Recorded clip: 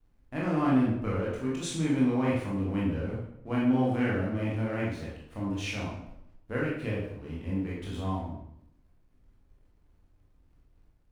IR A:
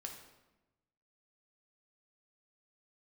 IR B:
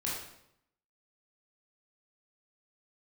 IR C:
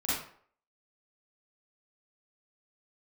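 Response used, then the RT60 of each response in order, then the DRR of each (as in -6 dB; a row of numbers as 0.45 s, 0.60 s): B; 1.0 s, 0.75 s, 0.55 s; 1.0 dB, -6.0 dB, -10.5 dB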